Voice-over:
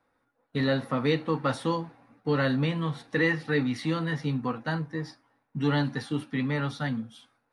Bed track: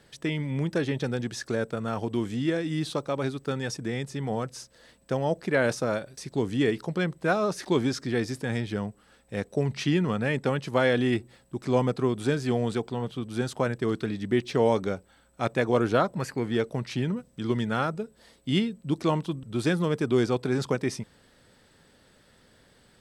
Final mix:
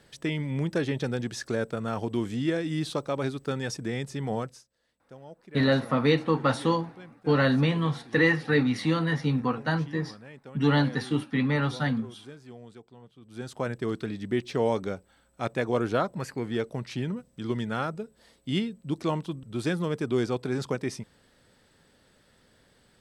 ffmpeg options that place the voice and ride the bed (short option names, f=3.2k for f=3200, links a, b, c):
-filter_complex "[0:a]adelay=5000,volume=3dB[a];[1:a]volume=16.5dB,afade=t=out:st=4.39:d=0.25:silence=0.105925,afade=t=in:st=13.2:d=0.51:silence=0.141254[b];[a][b]amix=inputs=2:normalize=0"